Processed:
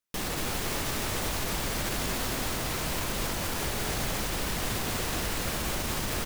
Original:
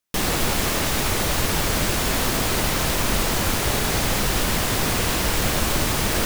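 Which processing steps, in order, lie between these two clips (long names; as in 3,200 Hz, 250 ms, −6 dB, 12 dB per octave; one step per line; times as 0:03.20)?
brickwall limiter −15.5 dBFS, peak gain reduction 7.5 dB
single-tap delay 234 ms −4.5 dB
level −7 dB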